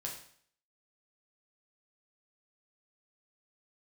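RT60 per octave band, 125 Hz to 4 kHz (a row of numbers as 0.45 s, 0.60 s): 0.60 s, 0.60 s, 0.55 s, 0.55 s, 0.55 s, 0.55 s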